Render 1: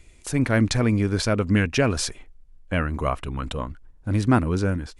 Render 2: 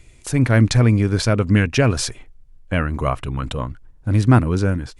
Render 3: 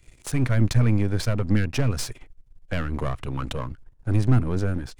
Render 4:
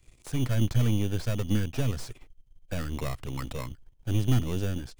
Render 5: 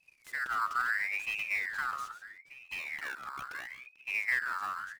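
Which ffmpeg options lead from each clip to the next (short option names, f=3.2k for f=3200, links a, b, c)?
-af "equalizer=f=120:t=o:w=0.39:g=7.5,volume=3dB"
-filter_complex "[0:a]aeval=exprs='if(lt(val(0),0),0.251*val(0),val(0))':c=same,acrossover=split=240[a][b];[b]acompressor=threshold=-28dB:ratio=6[c];[a][c]amix=inputs=2:normalize=0"
-filter_complex "[0:a]acrossover=split=1700[a][b];[a]acrusher=samples=14:mix=1:aa=0.000001[c];[b]asoftclip=type=hard:threshold=-36.5dB[d];[c][d]amix=inputs=2:normalize=0,volume=-5dB"
-af "aecho=1:1:142|143|722:0.282|0.112|0.119,aeval=exprs='val(0)*sin(2*PI*1900*n/s+1900*0.35/0.75*sin(2*PI*0.75*n/s))':c=same,volume=-6.5dB"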